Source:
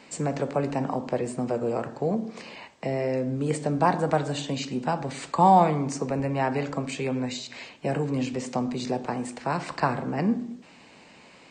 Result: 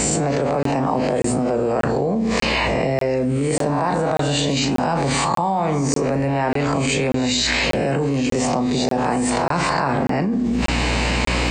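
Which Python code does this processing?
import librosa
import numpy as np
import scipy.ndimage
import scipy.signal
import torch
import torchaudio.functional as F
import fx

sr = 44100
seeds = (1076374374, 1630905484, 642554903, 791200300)

y = fx.spec_swells(x, sr, rise_s=0.55)
y = fx.add_hum(y, sr, base_hz=60, snr_db=26)
y = fx.doubler(y, sr, ms=36.0, db=-11.0)
y = fx.buffer_crackle(y, sr, first_s=0.63, period_s=0.59, block=1024, kind='zero')
y = fx.env_flatten(y, sr, amount_pct=100)
y = F.gain(torch.from_numpy(y), -6.0).numpy()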